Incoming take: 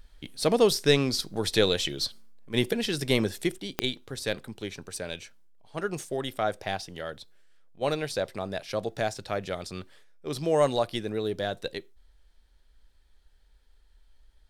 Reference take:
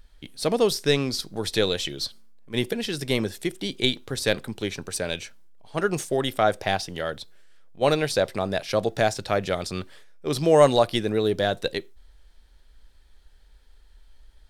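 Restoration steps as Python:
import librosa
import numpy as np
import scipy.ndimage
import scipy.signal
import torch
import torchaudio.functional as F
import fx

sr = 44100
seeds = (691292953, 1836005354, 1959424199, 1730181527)

y = fx.fix_declick_ar(x, sr, threshold=10.0)
y = fx.gain(y, sr, db=fx.steps((0.0, 0.0), (3.58, 7.0)))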